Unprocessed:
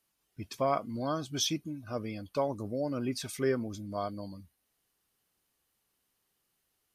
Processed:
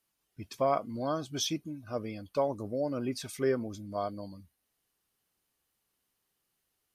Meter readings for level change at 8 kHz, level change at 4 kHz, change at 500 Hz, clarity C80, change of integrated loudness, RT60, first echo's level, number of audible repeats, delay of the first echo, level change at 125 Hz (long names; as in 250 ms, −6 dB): −2.0 dB, −2.0 dB, +1.5 dB, no reverb audible, +0.5 dB, no reverb audible, no echo audible, no echo audible, no echo audible, −1.5 dB